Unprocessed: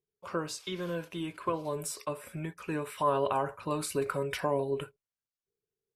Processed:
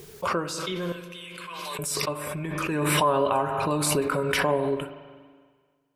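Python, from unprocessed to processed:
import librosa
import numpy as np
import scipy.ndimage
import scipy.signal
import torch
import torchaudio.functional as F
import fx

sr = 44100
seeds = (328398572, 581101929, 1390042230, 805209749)

y = fx.cheby1_highpass(x, sr, hz=2400.0, order=2, at=(0.92, 1.79))
y = fx.rev_spring(y, sr, rt60_s=1.7, pass_ms=(40, 47), chirp_ms=55, drr_db=8.5)
y = fx.pre_swell(y, sr, db_per_s=21.0)
y = F.gain(torch.from_numpy(y), 4.5).numpy()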